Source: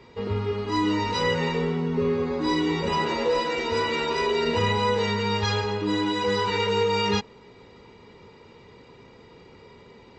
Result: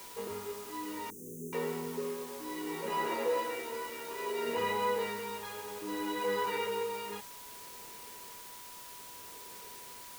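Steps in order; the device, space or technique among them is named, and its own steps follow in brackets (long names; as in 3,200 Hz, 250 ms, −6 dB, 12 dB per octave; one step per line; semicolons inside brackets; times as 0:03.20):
shortwave radio (band-pass filter 300–2,600 Hz; amplitude tremolo 0.63 Hz, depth 65%; steady tone 980 Hz −46 dBFS; white noise bed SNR 12 dB)
0:01.10–0:01.53: Chebyshev band-stop filter 390–6,200 Hz, order 5
level −6.5 dB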